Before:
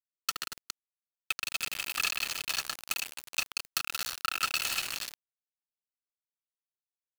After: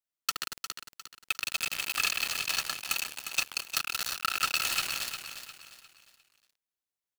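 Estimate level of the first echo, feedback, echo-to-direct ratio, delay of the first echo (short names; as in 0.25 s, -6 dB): -9.0 dB, 37%, -8.5 dB, 0.354 s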